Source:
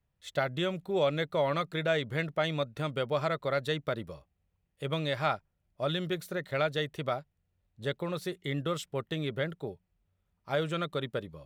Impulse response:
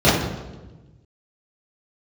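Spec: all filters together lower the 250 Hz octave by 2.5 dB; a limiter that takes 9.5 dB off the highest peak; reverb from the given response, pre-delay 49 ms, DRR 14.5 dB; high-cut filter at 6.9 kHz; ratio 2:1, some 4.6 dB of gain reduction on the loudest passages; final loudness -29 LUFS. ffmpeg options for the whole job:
-filter_complex "[0:a]lowpass=6900,equalizer=f=250:t=o:g=-4.5,acompressor=threshold=0.0251:ratio=2,alimiter=level_in=1.68:limit=0.0631:level=0:latency=1,volume=0.596,asplit=2[s0][s1];[1:a]atrim=start_sample=2205,adelay=49[s2];[s1][s2]afir=irnorm=-1:irlink=0,volume=0.0112[s3];[s0][s3]amix=inputs=2:normalize=0,volume=3.16"

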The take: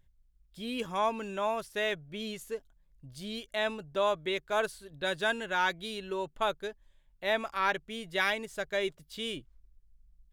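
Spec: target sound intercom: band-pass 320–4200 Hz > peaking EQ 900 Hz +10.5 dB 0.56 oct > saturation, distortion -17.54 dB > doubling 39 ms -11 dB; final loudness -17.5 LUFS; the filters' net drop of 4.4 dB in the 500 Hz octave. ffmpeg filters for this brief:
-filter_complex "[0:a]highpass=320,lowpass=4200,equalizer=f=500:t=o:g=-8.5,equalizer=f=900:t=o:w=0.56:g=10.5,asoftclip=threshold=0.126,asplit=2[s0][s1];[s1]adelay=39,volume=0.282[s2];[s0][s2]amix=inputs=2:normalize=0,volume=5.62"

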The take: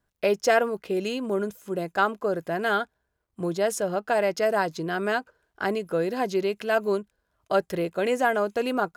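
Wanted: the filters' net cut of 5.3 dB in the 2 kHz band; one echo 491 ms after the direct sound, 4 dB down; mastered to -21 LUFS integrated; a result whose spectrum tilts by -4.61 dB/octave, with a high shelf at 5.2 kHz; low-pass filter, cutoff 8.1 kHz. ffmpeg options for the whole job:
-af "lowpass=8100,equalizer=f=2000:t=o:g=-6.5,highshelf=f=5200:g=-8,aecho=1:1:491:0.631,volume=1.88"

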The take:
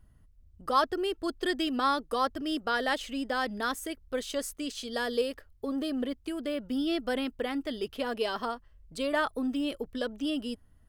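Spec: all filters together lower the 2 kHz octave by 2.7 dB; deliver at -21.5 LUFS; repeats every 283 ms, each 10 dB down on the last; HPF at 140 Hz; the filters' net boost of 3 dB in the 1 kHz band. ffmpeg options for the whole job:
-af "highpass=140,equalizer=f=1000:t=o:g=5.5,equalizer=f=2000:t=o:g=-6.5,aecho=1:1:283|566|849|1132:0.316|0.101|0.0324|0.0104,volume=2.82"

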